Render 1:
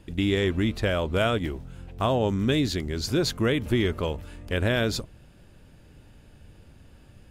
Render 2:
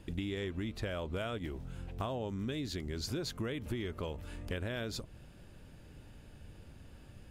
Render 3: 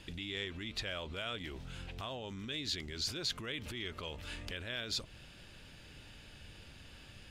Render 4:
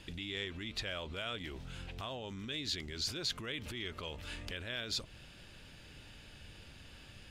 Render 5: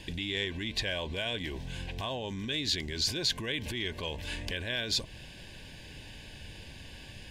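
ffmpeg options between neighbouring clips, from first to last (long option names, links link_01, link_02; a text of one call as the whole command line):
ffmpeg -i in.wav -af "acompressor=threshold=-33dB:ratio=6,volume=-2dB" out.wav
ffmpeg -i in.wav -af "alimiter=level_in=11dB:limit=-24dB:level=0:latency=1:release=15,volume=-11dB,equalizer=frequency=3500:width=0.43:gain=15,volume=-3dB" out.wav
ffmpeg -i in.wav -af anull out.wav
ffmpeg -i in.wav -af "asuperstop=centerf=1300:order=12:qfactor=4.1,volume=7dB" out.wav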